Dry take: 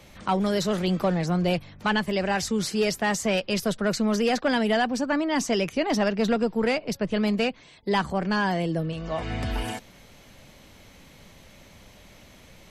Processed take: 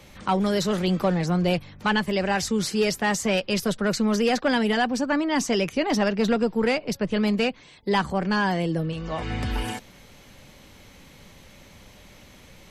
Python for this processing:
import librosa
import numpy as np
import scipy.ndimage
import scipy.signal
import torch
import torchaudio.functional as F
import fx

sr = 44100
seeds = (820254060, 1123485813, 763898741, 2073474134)

y = fx.notch(x, sr, hz=660.0, q=12.0)
y = F.gain(torch.from_numpy(y), 1.5).numpy()